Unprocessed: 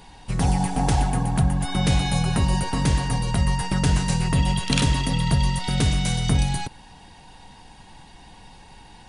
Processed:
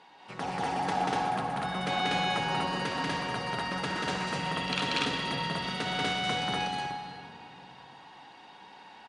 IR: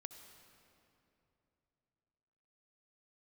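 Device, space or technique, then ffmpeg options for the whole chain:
station announcement: -filter_complex "[0:a]highpass=380,lowpass=3700,equalizer=frequency=1300:width_type=o:width=0.33:gain=5,aecho=1:1:186.6|242:0.891|1[link_01];[1:a]atrim=start_sample=2205[link_02];[link_01][link_02]afir=irnorm=-1:irlink=0"

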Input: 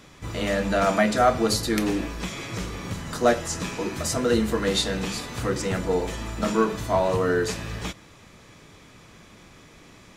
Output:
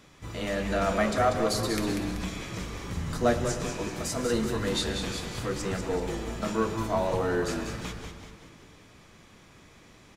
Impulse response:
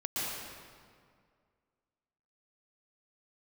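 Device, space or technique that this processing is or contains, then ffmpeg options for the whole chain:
saturated reverb return: -filter_complex "[0:a]asettb=1/sr,asplit=3[link_01][link_02][link_03];[link_01]atrim=end=2.964[link_04];[link_02]atrim=start=2.96:end=3.45,asetpts=PTS-STARTPTS,afade=type=in:duration=0.004:curve=qsin,afade=type=out:start_time=0.486:duration=0.004:curve=qsin,equalizer=frequency=73:width=0.51:gain=12.5[link_05];[link_03]atrim=start=3.446[link_06];[link_04][link_05]acrossfade=duration=0.004:curve1=hsin:curve2=qsin[link_07];[link_07][link_06]acrossfade=duration=0.004:curve1=qsin:curve2=hsin,asplit=2[link_08][link_09];[1:a]atrim=start_sample=2205[link_10];[link_09][link_10]afir=irnorm=-1:irlink=0,asoftclip=type=tanh:threshold=-9dB,volume=-14dB[link_11];[link_08][link_11]amix=inputs=2:normalize=0,asplit=7[link_12][link_13][link_14][link_15][link_16][link_17][link_18];[link_13]adelay=191,afreqshift=-110,volume=-7dB[link_19];[link_14]adelay=382,afreqshift=-220,volume=-13.4dB[link_20];[link_15]adelay=573,afreqshift=-330,volume=-19.8dB[link_21];[link_16]adelay=764,afreqshift=-440,volume=-26.1dB[link_22];[link_17]adelay=955,afreqshift=-550,volume=-32.5dB[link_23];[link_18]adelay=1146,afreqshift=-660,volume=-38.9dB[link_24];[link_12][link_19][link_20][link_21][link_22][link_23][link_24]amix=inputs=7:normalize=0,volume=-7dB"

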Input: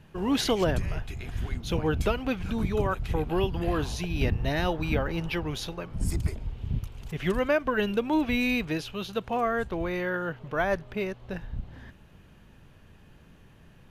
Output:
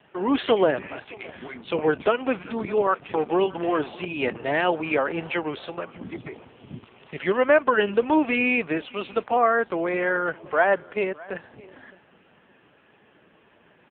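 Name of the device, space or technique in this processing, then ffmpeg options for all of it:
satellite phone: -af "highpass=350,lowpass=3400,aecho=1:1:612:0.0794,volume=8.5dB" -ar 8000 -c:a libopencore_amrnb -b:a 5900

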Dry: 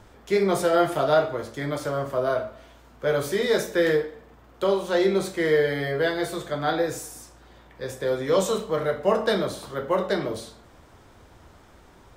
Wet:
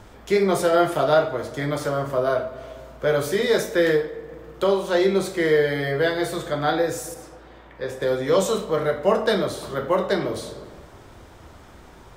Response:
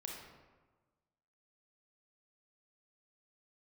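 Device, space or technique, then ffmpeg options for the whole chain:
compressed reverb return: -filter_complex "[0:a]asplit=2[link_01][link_02];[1:a]atrim=start_sample=2205[link_03];[link_02][link_03]afir=irnorm=-1:irlink=0,acompressor=threshold=-34dB:ratio=6,volume=0.5dB[link_04];[link_01][link_04]amix=inputs=2:normalize=0,asettb=1/sr,asplit=3[link_05][link_06][link_07];[link_05]atrim=end=7.144[link_08];[link_06]atrim=start=7.14:end=8.02,asetpts=PTS-STARTPTS,afade=type=in:duration=0.004:curve=qsin,afade=type=out:start_time=0.876:duration=0.004:curve=qsin,bass=frequency=250:gain=-5,treble=frequency=4000:gain=-9[link_09];[link_07]atrim=start=8.016[link_10];[link_08][link_09]acrossfade=duration=0.004:curve1=hsin:curve2=qsin[link_11];[link_11][link_10]acrossfade=duration=0.004:curve1=qsin:curve2=hsin,volume=1dB"

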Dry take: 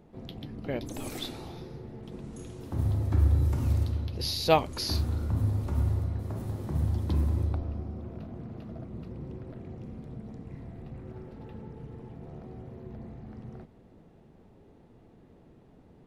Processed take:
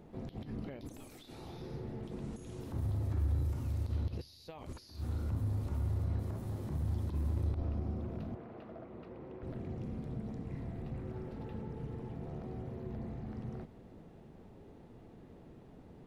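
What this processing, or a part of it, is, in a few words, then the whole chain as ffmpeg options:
de-esser from a sidechain: -filter_complex "[0:a]asettb=1/sr,asplit=3[link_01][link_02][link_03];[link_01]atrim=end=8.354[link_04];[link_02]atrim=start=8.35:end=9.43,asetpts=PTS-STARTPTS,afade=type=in:duration=0.004:curve=qsin,afade=type=out:start_time=1.076:duration=0.004:curve=qsin,acrossover=split=340 3100:gain=0.158 1 0.178[link_05][link_06][link_07];[link_05][link_06][link_07]amix=inputs=3:normalize=0[link_08];[link_03]atrim=start=9.426[link_09];[link_04][link_08]acrossfade=duration=0.004:curve1=hsin:curve2=qsin[link_10];[link_10][link_09]acrossfade=duration=0.004:curve1=qsin:curve2=hsin,asplit=2[link_11][link_12];[link_12]highpass=frequency=4300:poles=1,apad=whole_len=708302[link_13];[link_11][link_13]sidechaincompress=threshold=-59dB:ratio=10:attack=1:release=48,volume=1.5dB"

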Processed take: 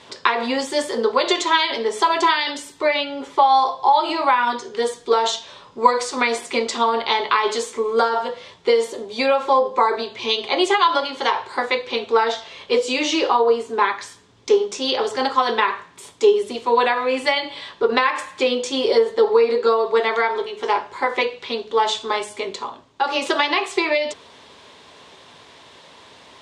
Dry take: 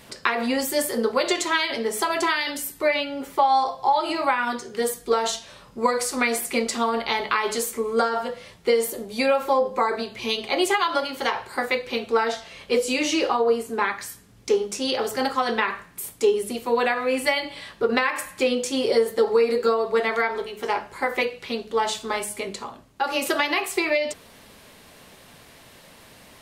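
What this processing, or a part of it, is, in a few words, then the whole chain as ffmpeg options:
car door speaker: -filter_complex "[0:a]asettb=1/sr,asplit=3[link_01][link_02][link_03];[link_01]atrim=end=18.984[link_04];[link_02]atrim=start=18.98:end=19.67,asetpts=PTS-STARTPTS,afade=type=in:duration=0.004:curve=qsin,afade=type=out:start_time=0.686:duration=0.004:curve=qsin,highshelf=frequency=7600:gain=-9.5[link_05];[link_03]atrim=start=19.666[link_06];[link_04][link_05]acrossfade=duration=0.004:curve1=hsin:curve2=qsin[link_07];[link_07][link_06]acrossfade=duration=0.004:curve1=qsin:curve2=hsin,highpass=96,equalizer=frequency=130:width_type=q:width=4:gain=-5,equalizer=frequency=200:width_type=q:width=4:gain=-8,equalizer=frequency=410:width_type=q:width=4:gain=4,equalizer=frequency=980:width_type=q:width=4:gain=8,equalizer=frequency=3500:width_type=q:width=4:gain=7,lowpass=frequency=7400:width=0.5412,lowpass=frequency=7400:width=1.3066,volume=1.5dB"

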